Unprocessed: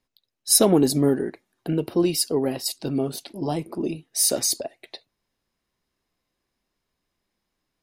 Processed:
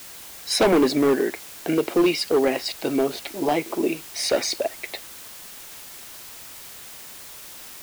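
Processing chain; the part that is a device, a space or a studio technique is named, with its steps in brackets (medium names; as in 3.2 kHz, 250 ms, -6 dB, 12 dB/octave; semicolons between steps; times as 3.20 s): drive-through speaker (band-pass 360–3300 Hz; peaking EQ 2.2 kHz +10 dB 0.42 oct; hard clipper -21 dBFS, distortion -9 dB; white noise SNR 16 dB); trim +7.5 dB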